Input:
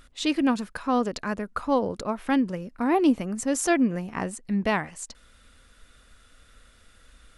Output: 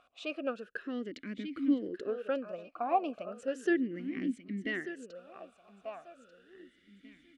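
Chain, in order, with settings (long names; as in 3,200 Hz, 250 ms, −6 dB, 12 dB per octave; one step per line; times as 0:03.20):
in parallel at −0.5 dB: downward compressor, threshold −30 dBFS, peak gain reduction 13.5 dB
on the sum: repeating echo 1,190 ms, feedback 32%, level −12 dB
formant filter swept between two vowels a-i 0.35 Hz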